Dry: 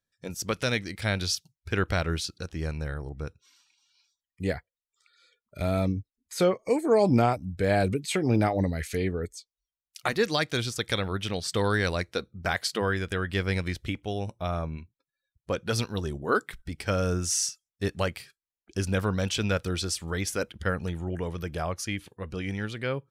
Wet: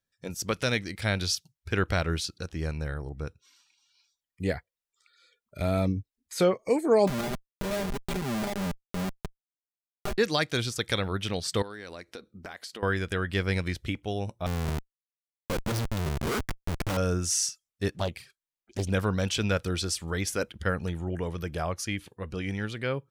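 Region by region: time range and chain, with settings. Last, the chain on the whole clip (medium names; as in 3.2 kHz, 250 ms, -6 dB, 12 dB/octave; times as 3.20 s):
7.07–10.18 s: Schmitt trigger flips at -24 dBFS + comb 5 ms, depth 87% + compression 3:1, threshold -29 dBFS
11.62–12.83 s: resonant low shelf 180 Hz -8 dB, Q 1.5 + compression, threshold -38 dBFS
14.46–16.97 s: peaking EQ 150 Hz +7 dB 1.7 oct + de-hum 143.7 Hz, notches 6 + Schmitt trigger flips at -32.5 dBFS
17.91–18.90 s: touch-sensitive flanger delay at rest 10.1 ms, full sweep at -26 dBFS + loudspeaker Doppler distortion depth 0.73 ms
whole clip: none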